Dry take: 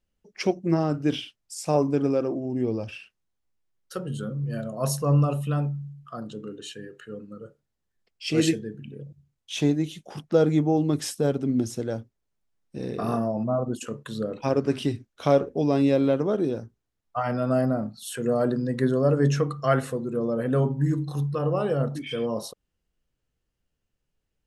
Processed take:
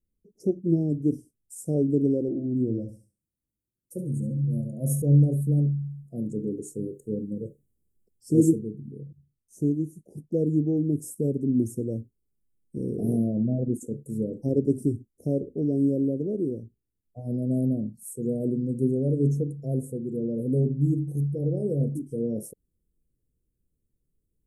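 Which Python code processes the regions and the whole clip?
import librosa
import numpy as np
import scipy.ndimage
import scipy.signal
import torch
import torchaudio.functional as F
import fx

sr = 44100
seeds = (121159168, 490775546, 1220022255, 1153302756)

y = fx.chain(x, sr, fx.notch_comb(f0_hz=420.0),
    fx.echo_feedback(ms=70, feedback_pct=26, wet_db=-9.5), at=(2.28, 5.02))
y = fx.rider(y, sr, range_db=10, speed_s=2.0)
y = scipy.signal.sosfilt(scipy.signal.cheby2(4, 60, [1100.0, 3700.0], 'bandstop', fs=sr, output='sos'), y)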